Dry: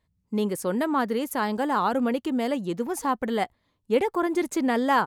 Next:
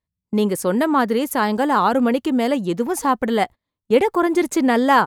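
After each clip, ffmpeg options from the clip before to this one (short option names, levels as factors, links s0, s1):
-af "agate=range=0.112:threshold=0.0141:ratio=16:detection=peak,volume=2.24"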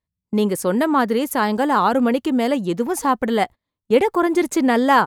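-af anull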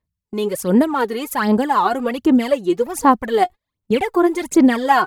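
-af "aphaser=in_gain=1:out_gain=1:delay=2.8:decay=0.7:speed=1.3:type=sinusoidal,volume=0.708"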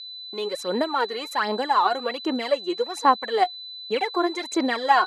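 -af "aeval=exprs='val(0)+0.0251*sin(2*PI*4000*n/s)':c=same,highpass=490,lowpass=6200,volume=0.708"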